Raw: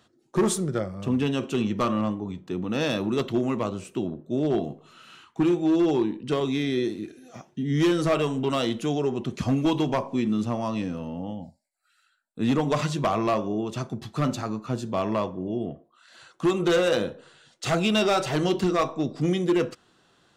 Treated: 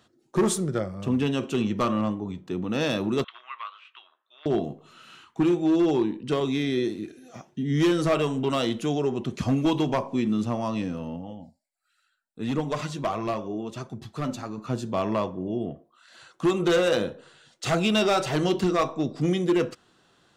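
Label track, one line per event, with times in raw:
3.240000	4.460000	elliptic band-pass 1100–3500 Hz, stop band 80 dB
11.160000	14.580000	flange 1.4 Hz, delay 0.1 ms, depth 4.4 ms, regen +61%

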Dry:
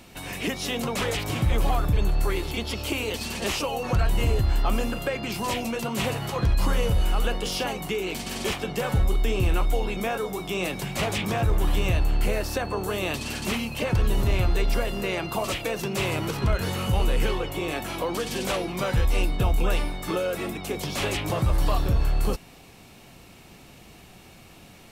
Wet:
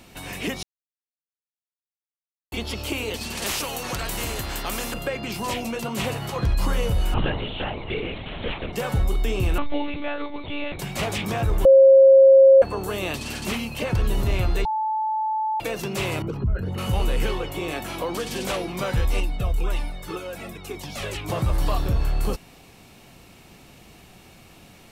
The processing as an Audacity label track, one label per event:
0.630000	2.520000	mute
3.370000	4.940000	spectral compressor 2:1
7.140000	8.730000	LPC vocoder at 8 kHz whisper
9.580000	10.790000	monotone LPC vocoder at 8 kHz 290 Hz
11.650000	12.620000	bleep 538 Hz -8 dBFS
14.650000	15.600000	bleep 871 Hz -21.5 dBFS
16.220000	16.780000	formant sharpening exponent 2
19.200000	21.290000	cascading flanger falling 1.9 Hz

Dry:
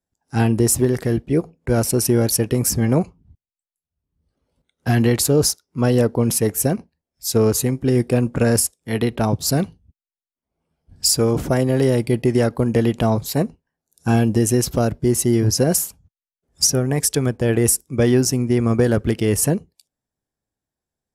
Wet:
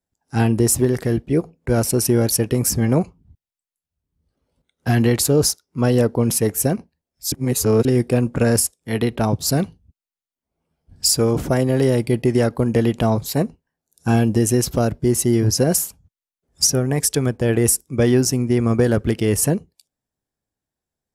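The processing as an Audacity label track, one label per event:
7.320000	7.850000	reverse

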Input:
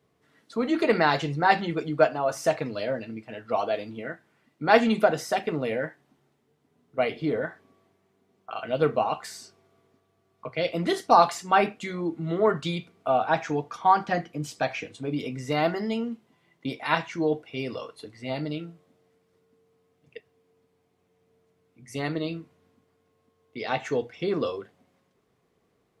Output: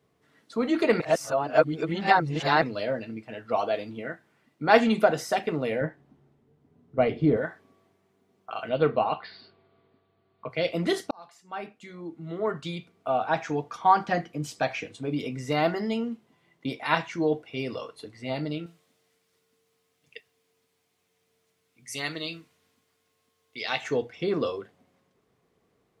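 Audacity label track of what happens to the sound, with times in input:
1.000000	2.620000	reverse
5.810000	7.370000	tilt -3 dB/oct
8.690000	10.500000	steep low-pass 4600 Hz 96 dB/oct
11.110000	13.910000	fade in
18.660000	23.840000	tilt shelf lows -9 dB, about 1400 Hz

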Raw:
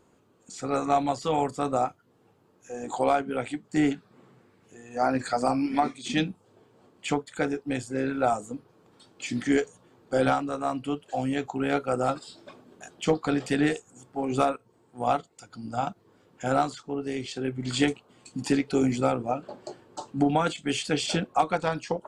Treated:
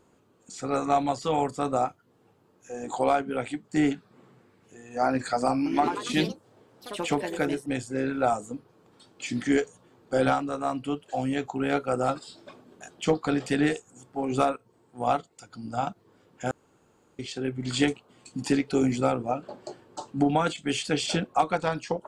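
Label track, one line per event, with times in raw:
5.530000	7.910000	echoes that change speed 0.129 s, each echo +3 st, echoes 3, each echo -6 dB
16.510000	17.190000	room tone

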